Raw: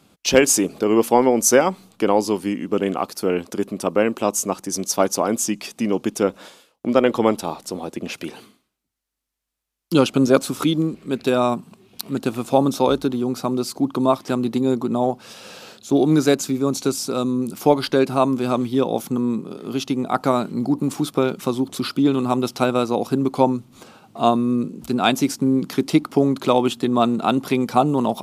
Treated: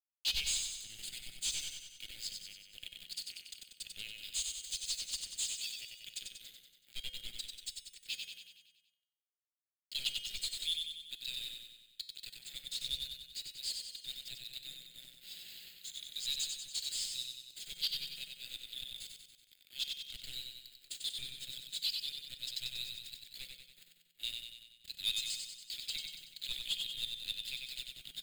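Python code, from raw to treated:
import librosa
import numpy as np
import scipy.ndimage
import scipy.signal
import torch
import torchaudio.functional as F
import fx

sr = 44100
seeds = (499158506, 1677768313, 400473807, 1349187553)

p1 = fx.cvsd(x, sr, bps=64000)
p2 = scipy.signal.sosfilt(scipy.signal.butter(4, 6900.0, 'lowpass', fs=sr, output='sos'), p1)
p3 = fx.dereverb_blind(p2, sr, rt60_s=0.87)
p4 = scipy.signal.sosfilt(scipy.signal.cheby2(4, 60, [150.0, 1300.0], 'bandstop', fs=sr, output='sos'), p3)
p5 = fx.tilt_shelf(p4, sr, db=-4.5, hz=970.0)
p6 = np.sign(p5) * np.maximum(np.abs(p5) - 10.0 ** (-48.5 / 20.0), 0.0)
p7 = fx.fixed_phaser(p6, sr, hz=2500.0, stages=4)
p8 = fx.comb_fb(p7, sr, f0_hz=170.0, decay_s=0.91, harmonics='odd', damping=0.0, mix_pct=70)
p9 = 10.0 ** (-40.0 / 20.0) * np.tanh(p8 / 10.0 ** (-40.0 / 20.0))
p10 = p9 + fx.echo_feedback(p9, sr, ms=94, feedback_pct=57, wet_db=-4.5, dry=0)
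y = p10 * librosa.db_to_amplitude(13.5)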